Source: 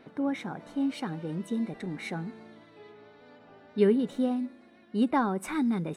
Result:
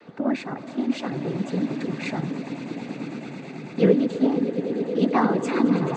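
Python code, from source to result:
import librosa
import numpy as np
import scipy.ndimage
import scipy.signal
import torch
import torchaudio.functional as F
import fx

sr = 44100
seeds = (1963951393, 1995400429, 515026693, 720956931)

y = fx.echo_swell(x, sr, ms=109, loudest=8, wet_db=-15)
y = fx.noise_vocoder(y, sr, seeds[0], bands=16)
y = y * 10.0 ** (5.5 / 20.0)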